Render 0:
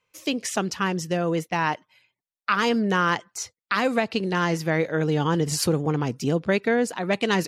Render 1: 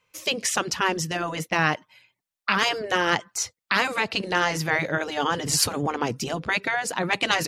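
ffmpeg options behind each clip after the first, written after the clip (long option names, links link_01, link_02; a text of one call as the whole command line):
ffmpeg -i in.wav -af "afftfilt=real='re*lt(hypot(re,im),0.355)':imag='im*lt(hypot(re,im),0.355)':win_size=1024:overlap=0.75,equalizer=frequency=390:width=1.5:gain=-2.5,volume=5dB" out.wav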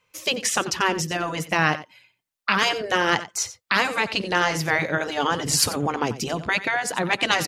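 ffmpeg -i in.wav -af "aecho=1:1:90:0.178,volume=1.5dB" out.wav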